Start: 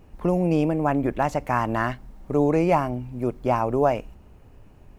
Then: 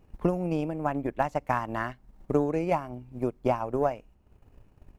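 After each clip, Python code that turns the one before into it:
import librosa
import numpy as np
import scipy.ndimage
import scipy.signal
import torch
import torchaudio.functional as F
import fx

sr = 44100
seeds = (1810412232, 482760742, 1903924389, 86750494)

y = fx.transient(x, sr, attack_db=9, sustain_db=-7)
y = y * 10.0 ** (-8.5 / 20.0)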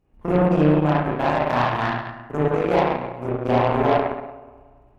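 y = fx.rev_spring(x, sr, rt60_s=1.7, pass_ms=(33, 53), chirp_ms=60, drr_db=-9.5)
y = fx.cheby_harmonics(y, sr, harmonics=(7,), levels_db=(-20,), full_scale_db=-5.5)
y = fx.transient(y, sr, attack_db=-4, sustain_db=0)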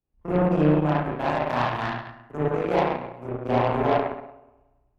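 y = fx.band_widen(x, sr, depth_pct=40)
y = y * 10.0 ** (-3.5 / 20.0)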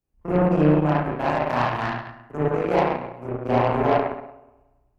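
y = fx.peak_eq(x, sr, hz=3500.0, db=-5.5, octaves=0.25)
y = y * 10.0 ** (2.0 / 20.0)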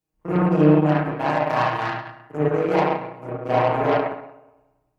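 y = fx.highpass(x, sr, hz=150.0, slope=6)
y = y + 0.71 * np.pad(y, (int(6.4 * sr / 1000.0), 0))[:len(y)]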